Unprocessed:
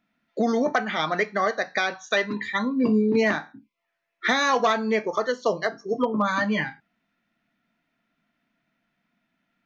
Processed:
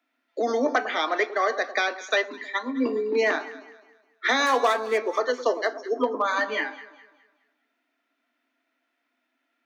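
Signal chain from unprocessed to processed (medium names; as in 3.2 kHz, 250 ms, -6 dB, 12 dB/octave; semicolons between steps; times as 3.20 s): 4.46–4.98 s: median filter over 9 samples; steep high-pass 250 Hz 96 dB/octave; echo whose repeats swap between lows and highs 104 ms, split 1.2 kHz, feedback 59%, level -12 dB; 2.18–2.86 s: upward expansion 1.5:1, over -31 dBFS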